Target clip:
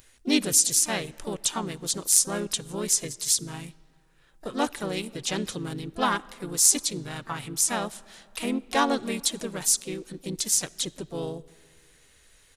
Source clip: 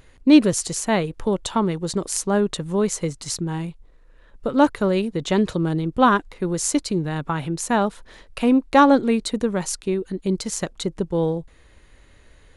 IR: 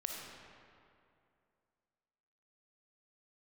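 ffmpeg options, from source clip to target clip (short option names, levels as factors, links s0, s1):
-filter_complex "[0:a]asplit=3[s0][s1][s2];[s1]asetrate=37084,aresample=44100,atempo=1.18921,volume=0.631[s3];[s2]asetrate=58866,aresample=44100,atempo=0.749154,volume=0.224[s4];[s0][s3][s4]amix=inputs=3:normalize=0,crystalizer=i=8:c=0,asplit=2[s5][s6];[1:a]atrim=start_sample=2205[s7];[s6][s7]afir=irnorm=-1:irlink=0,volume=0.112[s8];[s5][s8]amix=inputs=2:normalize=0,volume=0.188"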